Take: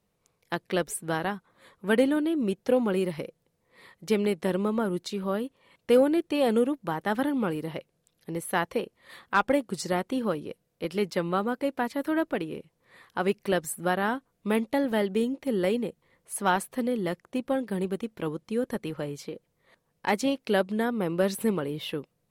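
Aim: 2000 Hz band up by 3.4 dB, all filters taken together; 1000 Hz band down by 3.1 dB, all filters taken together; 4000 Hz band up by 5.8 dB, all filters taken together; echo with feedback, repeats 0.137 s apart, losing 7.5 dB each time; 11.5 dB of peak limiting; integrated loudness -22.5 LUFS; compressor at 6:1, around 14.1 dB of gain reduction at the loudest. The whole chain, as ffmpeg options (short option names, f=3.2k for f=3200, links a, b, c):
-af "equalizer=f=1k:t=o:g=-6,equalizer=f=2k:t=o:g=5.5,equalizer=f=4k:t=o:g=6,acompressor=threshold=-33dB:ratio=6,alimiter=level_in=3.5dB:limit=-24dB:level=0:latency=1,volume=-3.5dB,aecho=1:1:137|274|411|548|685:0.422|0.177|0.0744|0.0312|0.0131,volume=15.5dB"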